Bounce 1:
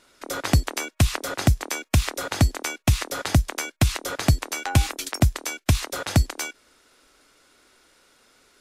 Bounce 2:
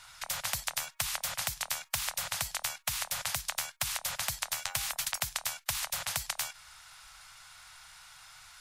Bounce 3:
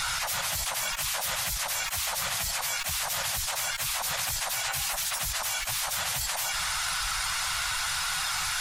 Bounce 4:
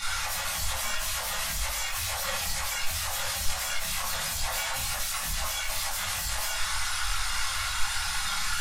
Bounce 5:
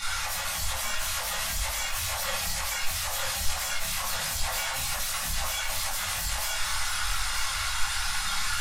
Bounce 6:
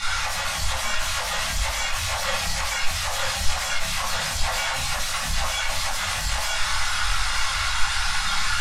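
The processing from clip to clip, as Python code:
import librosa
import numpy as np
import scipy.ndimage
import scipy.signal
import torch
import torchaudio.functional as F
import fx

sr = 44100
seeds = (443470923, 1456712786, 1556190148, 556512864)

y1 = scipy.signal.sosfilt(scipy.signal.ellip(3, 1.0, 80, [140.0, 800.0], 'bandstop', fs=sr, output='sos'), x)
y1 = fx.spectral_comp(y1, sr, ratio=4.0)
y1 = y1 * 10.0 ** (-3.5 / 20.0)
y2 = fx.phase_scramble(y1, sr, seeds[0], window_ms=50)
y2 = fx.env_flatten(y2, sr, amount_pct=100)
y3 = fx.chorus_voices(y2, sr, voices=6, hz=0.91, base_ms=24, depth_ms=2.6, mix_pct=60)
y3 = fx.room_shoebox(y3, sr, seeds[1], volume_m3=220.0, walls='furnished', distance_m=2.3)
y3 = y3 * 10.0 ** (-2.0 / 20.0)
y4 = y3 + 10.0 ** (-8.5 / 20.0) * np.pad(y3, (int(943 * sr / 1000.0), 0))[:len(y3)]
y5 = fx.air_absorb(y4, sr, metres=50.0)
y5 = y5 * 10.0 ** (6.5 / 20.0)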